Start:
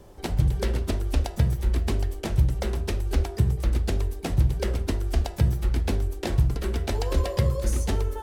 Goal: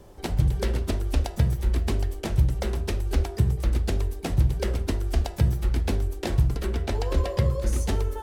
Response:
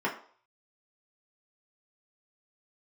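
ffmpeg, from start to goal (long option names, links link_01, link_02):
-filter_complex "[0:a]asettb=1/sr,asplit=3[link_01][link_02][link_03];[link_01]atrim=end=6.664[link_04];[link_02]atrim=start=6.66:end=7.73,asetpts=PTS-STARTPTS,afade=type=in:duration=0.004:curve=qsin,afade=type=out:start_time=1.066:duration=0.004:curve=qsin,highshelf=frequency=5500:gain=-6.5[link_05];[link_03]atrim=start=7.726[link_06];[link_04][link_05]acrossfade=duration=0.004:curve1=hsin:curve2=qsin[link_07];[link_07][link_06]acrossfade=duration=0.004:curve1=qsin:curve2=hsin"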